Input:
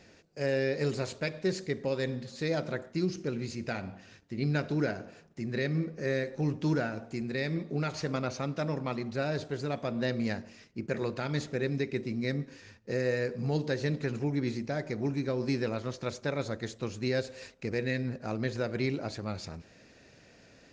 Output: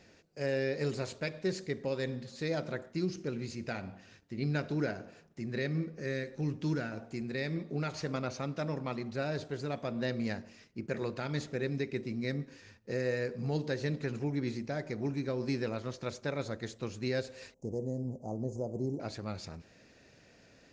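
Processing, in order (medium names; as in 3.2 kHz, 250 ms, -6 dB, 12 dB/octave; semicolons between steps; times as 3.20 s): 5.83–6.92 s: dynamic bell 730 Hz, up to -6 dB, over -45 dBFS, Q 1; 17.54–19.00 s: elliptic band-stop 850–6400 Hz, stop band 40 dB; trim -3 dB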